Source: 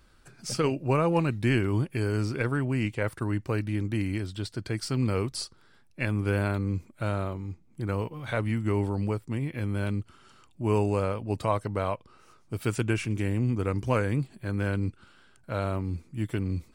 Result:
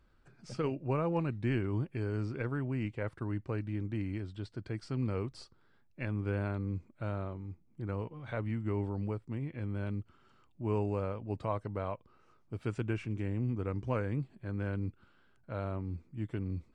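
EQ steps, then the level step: tape spacing loss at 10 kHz 22 dB; peaking EQ 7.9 kHz +3 dB 0.53 oct; -6.5 dB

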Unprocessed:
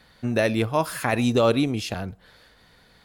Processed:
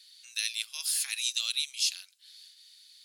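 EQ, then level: Chebyshev high-pass 2.9 kHz, order 3; high-order bell 6.6 kHz +9 dB; 0.0 dB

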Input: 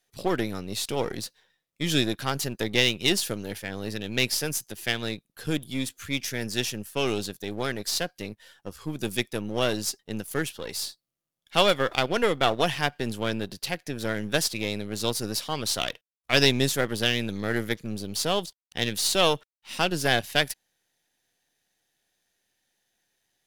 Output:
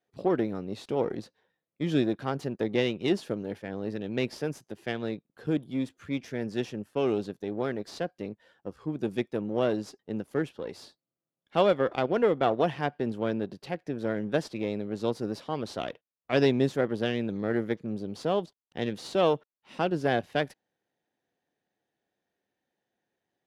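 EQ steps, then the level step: band-pass filter 350 Hz, Q 0.59; +1.5 dB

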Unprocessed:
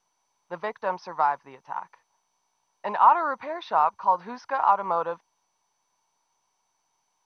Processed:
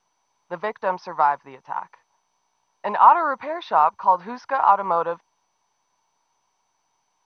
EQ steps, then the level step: distance through air 54 m; +4.5 dB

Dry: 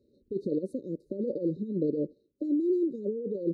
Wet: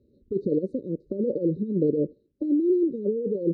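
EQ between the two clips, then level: bass shelf 210 Hz +11 dB; dynamic bell 460 Hz, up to +5 dB, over -39 dBFS, Q 2.2; distance through air 140 m; 0.0 dB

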